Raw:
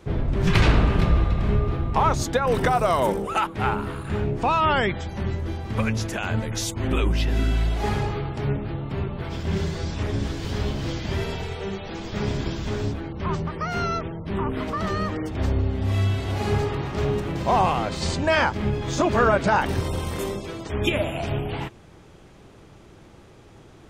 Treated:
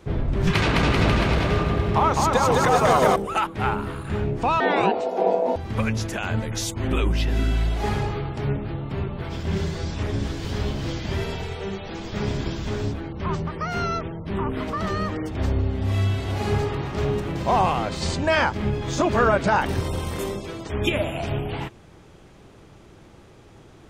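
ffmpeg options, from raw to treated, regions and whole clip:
-filter_complex "[0:a]asettb=1/sr,asplit=3[a][b][c];[a]atrim=end=0.524[d];[b]atrim=start=0.52:end=3.16,asetpts=PTS-STARTPTS,afade=t=in:d=0.004:c=qsin,afade=t=out:st=2.636:d=0.004:c=qsin,highpass=f=150:p=1,aecho=1:1:210|388.5|540.2|669.2|778.8|872|951.2:0.794|0.631|0.501|0.398|0.316|0.251|0.2,atrim=end_sample=116424[e];[c]atrim=start=3.156[f];[d][e]acrossfade=d=0.004:c1=hsin:c2=qsin[g];[g][f]acrossfade=d=0.004:c1=qsin:c2=hsin,asettb=1/sr,asplit=3[h][i][j];[h]atrim=end=4.604[k];[i]atrim=start=4.6:end=5.56,asetpts=PTS-STARTPTS,afade=t=in:d=0.004:c=qsin,afade=t=out:st=0.956:d=0.004:c=qsin,lowshelf=f=420:t=q:w=1.5:g=8.5,aeval=exprs='val(0)*sin(2*PI*580*n/s)':c=same,highpass=140[l];[j]atrim=start=5.556[m];[k][l]acrossfade=d=0.004:c1=hsin:c2=qsin[n];[n][m]acrossfade=d=0.004:c1=qsin:c2=hsin"

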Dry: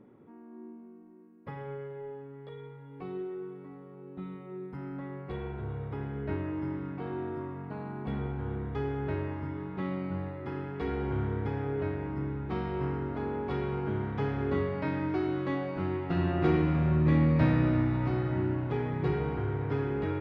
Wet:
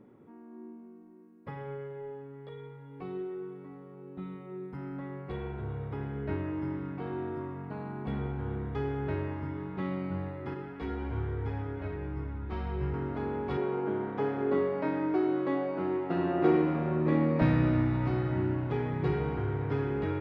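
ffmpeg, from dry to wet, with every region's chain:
-filter_complex "[0:a]asettb=1/sr,asplit=3[a][b][c];[a]atrim=end=10.544[d];[b]atrim=start=10.54:end=12.94,asetpts=PTS-STARTPTS,afade=t=in:d=0.004:c=qsin,afade=t=out:st=2.396:d=0.004:c=qsin,asubboost=boost=6.5:cutoff=100,flanger=delay=16.5:depth=2:speed=1.3[e];[c]atrim=start=12.936[f];[d][e]acrossfade=d=0.004:c1=hsin:c2=qsin[g];[g][f]acrossfade=d=0.004:c1=qsin:c2=hsin,asettb=1/sr,asplit=3[h][i][j];[h]atrim=end=13.574[k];[i]atrim=start=13.57:end=17.42,asetpts=PTS-STARTPTS,afade=t=in:d=0.004:c=qsin,afade=t=out:st=3.846:d=0.004:c=qsin,highpass=310,tiltshelf=f=1.3k:g=6[l];[j]atrim=start=17.416[m];[k][l]acrossfade=d=0.004:c1=hsin:c2=qsin[n];[n][m]acrossfade=d=0.004:c1=qsin:c2=hsin"

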